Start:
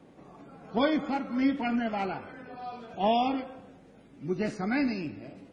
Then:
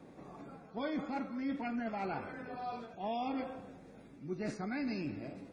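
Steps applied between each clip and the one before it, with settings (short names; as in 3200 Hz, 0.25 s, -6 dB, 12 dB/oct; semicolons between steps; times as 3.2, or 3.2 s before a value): reverse; compressor 6:1, threshold -35 dBFS, peak gain reduction 13.5 dB; reverse; notch 3000 Hz, Q 6.4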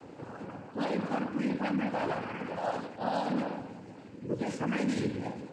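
limiter -31.5 dBFS, peak gain reduction 5 dB; noise vocoder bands 8; gain +8 dB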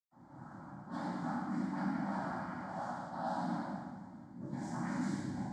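fixed phaser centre 1100 Hz, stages 4; reverb RT60 1.6 s, pre-delay 0.105 s; mismatched tape noise reduction decoder only; gain +1 dB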